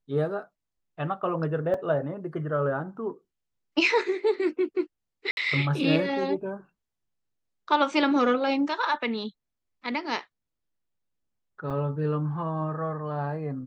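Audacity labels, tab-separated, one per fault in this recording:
1.740000	1.740000	dropout 3.4 ms
5.310000	5.370000	dropout 61 ms
11.700000	11.710000	dropout 6 ms

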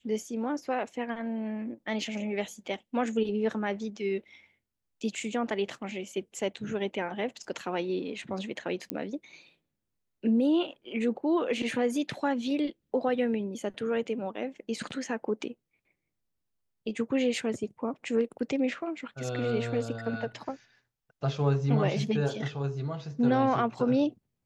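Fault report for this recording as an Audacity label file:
8.900000	8.900000	pop -15 dBFS

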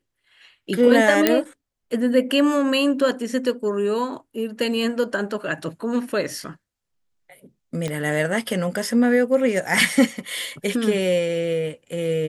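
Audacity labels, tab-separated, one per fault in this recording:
1.270000	1.270000	pop -1 dBFS
7.880000	7.880000	pop -15 dBFS

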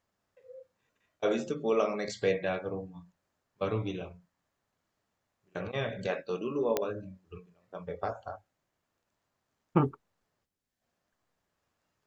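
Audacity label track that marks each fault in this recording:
6.770000	6.770000	pop -13 dBFS

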